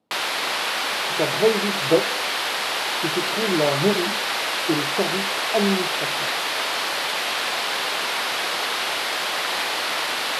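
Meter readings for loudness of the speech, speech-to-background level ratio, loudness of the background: -25.0 LUFS, -2.0 dB, -23.0 LUFS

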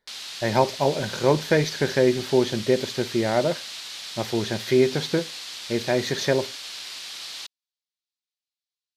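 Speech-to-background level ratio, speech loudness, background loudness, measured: 10.0 dB, -24.0 LUFS, -34.0 LUFS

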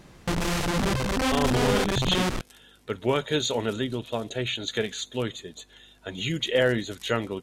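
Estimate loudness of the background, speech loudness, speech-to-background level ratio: -26.0 LUFS, -28.0 LUFS, -2.0 dB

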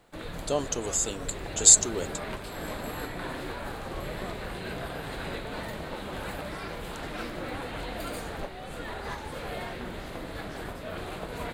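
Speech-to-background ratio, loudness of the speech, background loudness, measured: 15.5 dB, -21.5 LUFS, -37.0 LUFS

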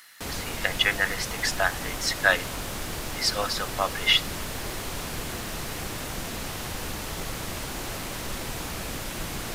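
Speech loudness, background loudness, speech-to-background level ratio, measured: -25.0 LUFS, -33.0 LUFS, 8.0 dB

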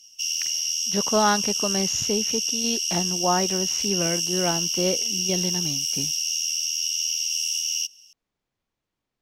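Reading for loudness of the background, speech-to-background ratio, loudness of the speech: -23.5 LUFS, -4.0 dB, -27.5 LUFS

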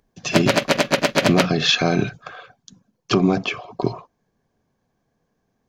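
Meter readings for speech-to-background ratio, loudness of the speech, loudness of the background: -0.5 dB, -21.0 LUFS, -20.5 LUFS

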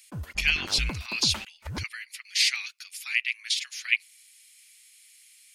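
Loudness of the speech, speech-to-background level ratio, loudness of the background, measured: -26.5 LUFS, 11.5 dB, -38.0 LUFS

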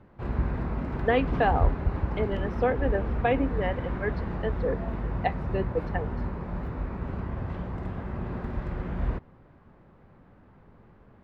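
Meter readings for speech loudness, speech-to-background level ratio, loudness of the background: -30.0 LUFS, 2.0 dB, -32.0 LUFS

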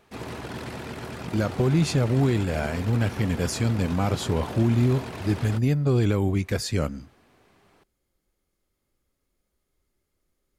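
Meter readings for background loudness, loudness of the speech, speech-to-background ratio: -36.5 LUFS, -24.5 LUFS, 12.0 dB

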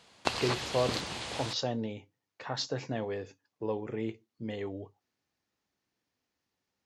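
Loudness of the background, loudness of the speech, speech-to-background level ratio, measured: -35.0 LUFS, -36.0 LUFS, -1.0 dB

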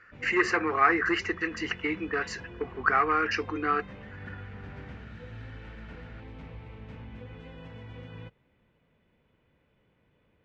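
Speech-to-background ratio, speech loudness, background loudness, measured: 18.0 dB, -27.5 LUFS, -45.5 LUFS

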